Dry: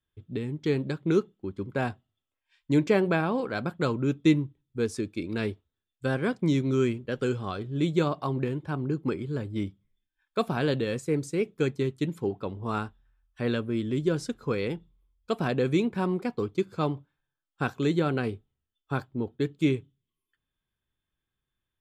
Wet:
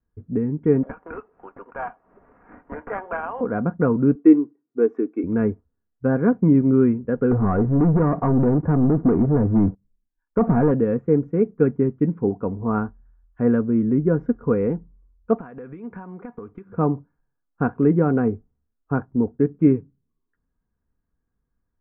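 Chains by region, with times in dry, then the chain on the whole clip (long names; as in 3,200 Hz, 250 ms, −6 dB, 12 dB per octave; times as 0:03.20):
0:00.83–0:03.41: high-pass filter 730 Hz 24 dB per octave + upward compression, threshold −33 dBFS + sample-rate reduction 3,900 Hz
0:04.15–0:05.24: high-pass filter 250 Hz 24 dB per octave + comb filter 2.7 ms, depth 56%
0:07.31–0:10.71: low-pass filter 1,200 Hz 6 dB per octave + downward compressor 3 to 1, threshold −28 dBFS + leveller curve on the samples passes 3
0:15.38–0:16.70: tilt shelving filter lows −8.5 dB, about 840 Hz + downward compressor 16 to 1, threshold −39 dBFS
whole clip: inverse Chebyshev low-pass filter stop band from 4,000 Hz, stop band 50 dB; low-shelf EQ 480 Hz +8 dB; comb filter 4.2 ms, depth 44%; level +2.5 dB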